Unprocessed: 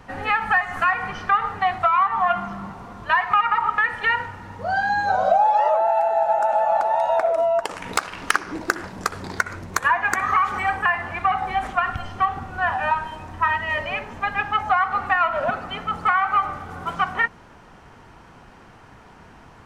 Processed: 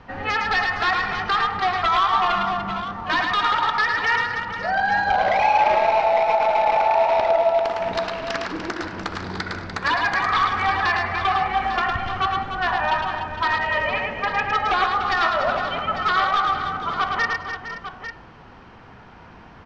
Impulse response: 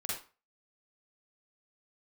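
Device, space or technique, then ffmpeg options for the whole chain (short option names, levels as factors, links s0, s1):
synthesiser wavefolder: -filter_complex "[0:a]aeval=exprs='0.178*(abs(mod(val(0)/0.178+3,4)-2)-1)':c=same,lowpass=f=5000:w=0.5412,lowpass=f=5000:w=1.3066,bandreject=f=138.6:t=h:w=4,bandreject=f=277.2:t=h:w=4,bandreject=f=415.8:t=h:w=4,bandreject=f=554.4:t=h:w=4,bandreject=f=693:t=h:w=4,bandreject=f=831.6:t=h:w=4,bandreject=f=970.2:t=h:w=4,bandreject=f=1108.8:t=h:w=4,bandreject=f=1247.4:t=h:w=4,bandreject=f=1386:t=h:w=4,bandreject=f=1524.6:t=h:w=4,bandreject=f=1663.2:t=h:w=4,bandreject=f=1801.8:t=h:w=4,bandreject=f=1940.4:t=h:w=4,bandreject=f=2079:t=h:w=4,bandreject=f=2217.6:t=h:w=4,bandreject=f=2356.2:t=h:w=4,bandreject=f=2494.8:t=h:w=4,bandreject=f=2633.4:t=h:w=4,bandreject=f=2772:t=h:w=4,bandreject=f=2910.6:t=h:w=4,bandreject=f=3049.2:t=h:w=4,bandreject=f=3187.8:t=h:w=4,bandreject=f=3326.4:t=h:w=4,bandreject=f=3465:t=h:w=4,bandreject=f=3603.6:t=h:w=4,bandreject=f=3742.2:t=h:w=4,bandreject=f=3880.8:t=h:w=4,bandreject=f=4019.4:t=h:w=4,bandreject=f=4158:t=h:w=4,bandreject=f=4296.6:t=h:w=4,bandreject=f=4435.2:t=h:w=4,bandreject=f=4573.8:t=h:w=4,bandreject=f=4712.4:t=h:w=4,bandreject=f=4851:t=h:w=4,bandreject=f=4989.6:t=h:w=4,asettb=1/sr,asplit=3[s0][s1][s2];[s0]atrim=end=13.454[s3];[s1]atrim=start=13.45:end=14.76,asetpts=PTS-STARTPTS,afade=t=in:d=0.004:c=qsin,afade=t=out:st=1.306:d=0.004:c=qsin,equalizer=f=490:w=5:g=10[s4];[s2]atrim=start=14.756[s5];[s3][s4]acrossfade=d=0.004:c1=hsin:c2=qsin[s6];[s6][s5]acrossfade=d=0.004:c1=qsin:c2=hsin,aecho=1:1:108|209|295|460|526|848:0.631|0.119|0.355|0.251|0.178|0.282"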